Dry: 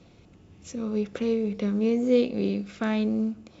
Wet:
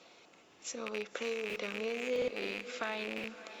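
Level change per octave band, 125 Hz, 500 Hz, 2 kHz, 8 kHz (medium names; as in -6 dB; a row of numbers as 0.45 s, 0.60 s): under -20 dB, -9.5 dB, +2.0 dB, no reading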